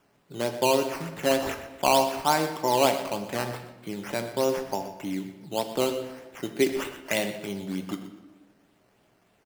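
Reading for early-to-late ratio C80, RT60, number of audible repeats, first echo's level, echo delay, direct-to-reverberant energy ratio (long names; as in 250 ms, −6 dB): 9.5 dB, 1.1 s, 2, −13.0 dB, 122 ms, 6.0 dB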